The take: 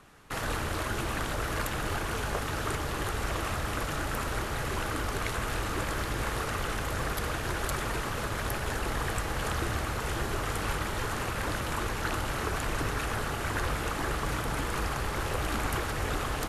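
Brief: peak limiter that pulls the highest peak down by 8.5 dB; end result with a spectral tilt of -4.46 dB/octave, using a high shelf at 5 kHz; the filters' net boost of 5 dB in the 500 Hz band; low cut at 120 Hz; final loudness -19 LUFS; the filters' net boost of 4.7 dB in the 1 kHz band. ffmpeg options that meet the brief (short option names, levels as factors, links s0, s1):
-af "highpass=120,equalizer=f=500:t=o:g=5,equalizer=f=1000:t=o:g=5,highshelf=f=5000:g=-6.5,volume=4.22,alimiter=limit=0.355:level=0:latency=1"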